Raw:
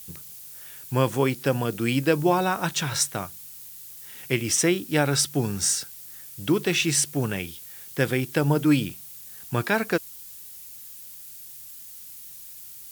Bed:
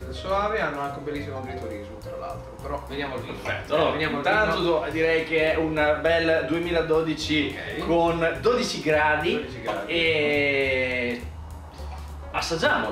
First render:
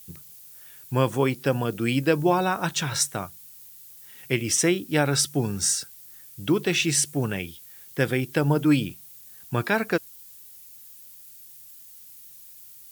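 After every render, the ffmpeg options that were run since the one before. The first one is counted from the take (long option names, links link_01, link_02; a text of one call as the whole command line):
ffmpeg -i in.wav -af "afftdn=noise_reduction=6:noise_floor=-43" out.wav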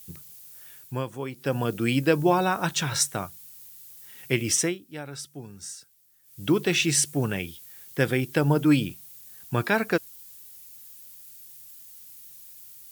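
ffmpeg -i in.wav -filter_complex "[0:a]asplit=5[link_01][link_02][link_03][link_04][link_05];[link_01]atrim=end=1.05,asetpts=PTS-STARTPTS,afade=type=out:start_time=0.73:duration=0.32:silence=0.281838[link_06];[link_02]atrim=start=1.05:end=1.32,asetpts=PTS-STARTPTS,volume=-11dB[link_07];[link_03]atrim=start=1.32:end=4.78,asetpts=PTS-STARTPTS,afade=type=in:duration=0.32:silence=0.281838,afade=type=out:start_time=3.23:duration=0.23:silence=0.16788[link_08];[link_04]atrim=start=4.78:end=6.23,asetpts=PTS-STARTPTS,volume=-15.5dB[link_09];[link_05]atrim=start=6.23,asetpts=PTS-STARTPTS,afade=type=in:duration=0.23:silence=0.16788[link_10];[link_06][link_07][link_08][link_09][link_10]concat=n=5:v=0:a=1" out.wav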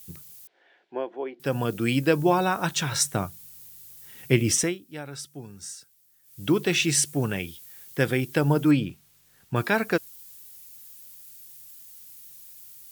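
ffmpeg -i in.wav -filter_complex "[0:a]asettb=1/sr,asplit=3[link_01][link_02][link_03];[link_01]atrim=end=0.474[link_04];[link_02]atrim=start=0.47:end=1.4,asetpts=PTS-STARTPTS,afade=type=in:duration=0.004:curve=qsin,afade=type=out:start_time=0.926:duration=0.004:curve=qsin,highpass=frequency=300:width=0.5412,highpass=frequency=300:width=1.3066,equalizer=frequency=360:width_type=q:width=4:gain=6,equalizer=frequency=700:width_type=q:width=4:gain=9,equalizer=frequency=1200:width_type=q:width=4:gain=-9,equalizer=frequency=2600:width_type=q:width=4:gain=-6,lowpass=frequency=2900:width=0.5412,lowpass=frequency=2900:width=1.3066[link_05];[link_03]atrim=start=1.396[link_06];[link_04][link_05]acrossfade=duration=0.004:curve1=hsin:curve2=qsin[link_07];[link_07][link_06]acrossfade=duration=0.004:curve1=qsin:curve2=hsin,asettb=1/sr,asplit=3[link_08][link_09][link_10];[link_08]atrim=end=3.054[link_11];[link_09]atrim=start=3.05:end=4.64,asetpts=PTS-STARTPTS,afade=type=in:duration=0.004:curve=qsin,afade=type=out:start_time=1.586:duration=0.004:curve=qsin,lowshelf=frequency=480:gain=7[link_12];[link_10]atrim=start=4.636[link_13];[link_11][link_12]acrossfade=duration=0.004:curve1=hsin:curve2=qsin[link_14];[link_14][link_13]acrossfade=duration=0.004:curve1=qsin:curve2=hsin,asettb=1/sr,asplit=3[link_15][link_16][link_17];[link_15]atrim=end=8.714[link_18];[link_16]atrim=start=8.71:end=9.56,asetpts=PTS-STARTPTS,afade=type=in:duration=0.004:curve=qsin,afade=type=out:start_time=0.846:duration=0.004:curve=qsin,lowpass=frequency=2300:poles=1[link_19];[link_17]atrim=start=9.556[link_20];[link_18][link_19]acrossfade=duration=0.004:curve1=hsin:curve2=qsin[link_21];[link_21][link_20]acrossfade=duration=0.004:curve1=qsin:curve2=hsin" out.wav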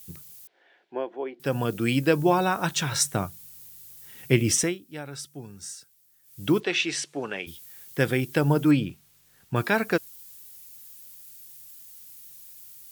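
ffmpeg -i in.wav -filter_complex "[0:a]asplit=3[link_01][link_02][link_03];[link_01]afade=type=out:start_time=6.59:duration=0.02[link_04];[link_02]highpass=380,lowpass=4400,afade=type=in:start_time=6.59:duration=0.02,afade=type=out:start_time=7.46:duration=0.02[link_05];[link_03]afade=type=in:start_time=7.46:duration=0.02[link_06];[link_04][link_05][link_06]amix=inputs=3:normalize=0" out.wav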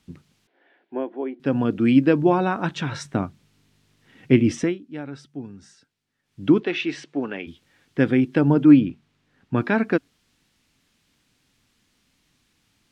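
ffmpeg -i in.wav -af "lowpass=2900,equalizer=frequency=260:width_type=o:width=0.68:gain=11.5" out.wav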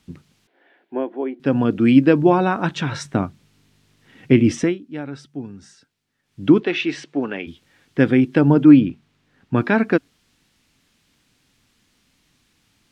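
ffmpeg -i in.wav -af "volume=3.5dB,alimiter=limit=-1dB:level=0:latency=1" out.wav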